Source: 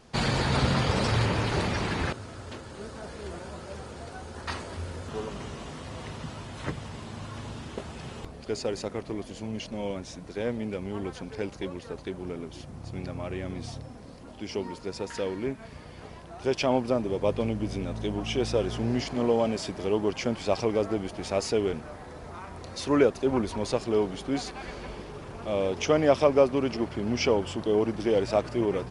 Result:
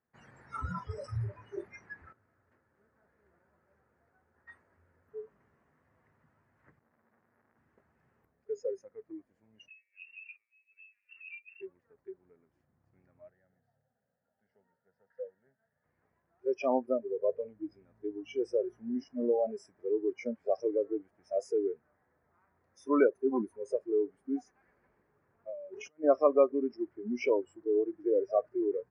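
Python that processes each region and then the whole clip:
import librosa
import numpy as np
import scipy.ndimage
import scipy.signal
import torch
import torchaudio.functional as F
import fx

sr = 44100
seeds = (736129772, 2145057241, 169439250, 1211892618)

y = fx.chain(x, sr, fx.peak_eq(hz=230.0, db=10.5, octaves=0.61),
    fx.hum_notches(base_hz=50, count=4),
    fx.transformer_sat(knee_hz=1600.0), at=(6.79, 7.58))
y = fx.chain(y, sr, fx.peak_eq(hz=2000.0, db=-7.5, octaves=2.3),
    fx.over_compress(threshold_db=-39.0, ratio=-0.5),
    fx.freq_invert(carrier_hz=2800), at=(9.68, 11.61))
y = fx.chain(y, sr, fx.bandpass_edges(low_hz=140.0, high_hz=7800.0),
    fx.high_shelf(hz=2300.0, db=-7.0),
    fx.fixed_phaser(hz=1600.0, stages=8), at=(13.3, 15.84))
y = fx.chain(y, sr, fx.highpass(hz=120.0, slope=12),
    fx.over_compress(threshold_db=-34.0, ratio=-1.0), at=(25.48, 26.04))
y = scipy.signal.sosfilt(scipy.signal.butter(2, 74.0, 'highpass', fs=sr, output='sos'), y)
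y = fx.noise_reduce_blind(y, sr, reduce_db=29)
y = fx.high_shelf_res(y, sr, hz=2500.0, db=-11.5, q=3.0)
y = y * librosa.db_to_amplitude(-3.5)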